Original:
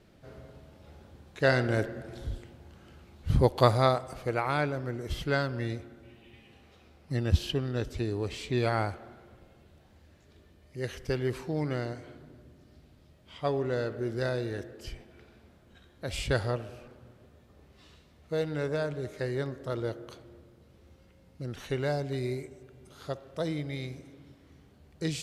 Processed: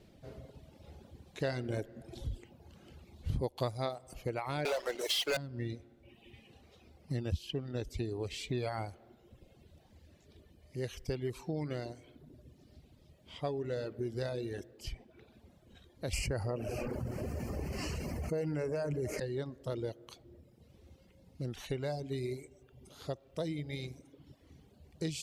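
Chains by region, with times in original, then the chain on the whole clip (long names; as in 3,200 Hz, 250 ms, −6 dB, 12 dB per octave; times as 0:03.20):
0:04.65–0:05.37: high-pass filter 510 Hz 24 dB per octave + dynamic equaliser 3,900 Hz, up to +6 dB, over −54 dBFS, Q 0.96 + leveller curve on the samples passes 5
0:16.13–0:19.20: Butterworth band-reject 3,600 Hz, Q 2 + envelope flattener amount 70%
whole clip: reverb reduction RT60 0.92 s; parametric band 1,400 Hz −7.5 dB 0.95 octaves; downward compressor 3 to 1, threshold −35 dBFS; level +1 dB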